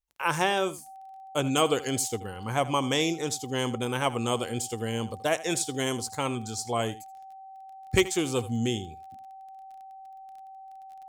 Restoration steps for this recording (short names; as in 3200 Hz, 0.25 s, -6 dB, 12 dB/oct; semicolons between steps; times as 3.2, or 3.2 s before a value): de-click; notch 770 Hz, Q 30; inverse comb 79 ms -17 dB